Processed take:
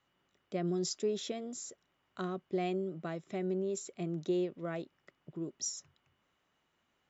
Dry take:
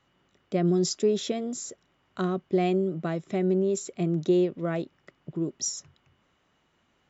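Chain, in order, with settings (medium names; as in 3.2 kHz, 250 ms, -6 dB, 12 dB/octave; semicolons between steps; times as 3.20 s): bass shelf 380 Hz -5 dB; trim -7 dB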